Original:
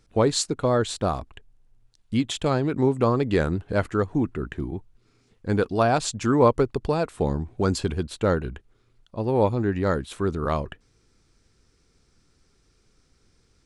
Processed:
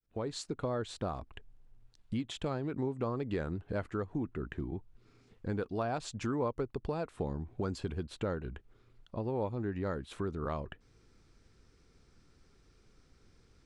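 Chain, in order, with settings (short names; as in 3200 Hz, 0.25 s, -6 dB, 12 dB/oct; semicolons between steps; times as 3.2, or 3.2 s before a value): opening faded in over 0.59 s; compressor 2.5:1, threshold -38 dBFS, peak gain reduction 16.5 dB; high shelf 5400 Hz -10.5 dB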